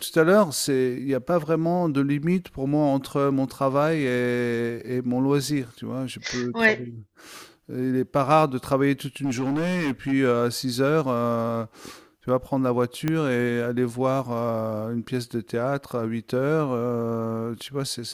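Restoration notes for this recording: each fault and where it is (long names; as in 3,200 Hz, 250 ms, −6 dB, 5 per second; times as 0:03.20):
0:09.24–0:10.13: clipping −21.5 dBFS
0:13.08: click −11 dBFS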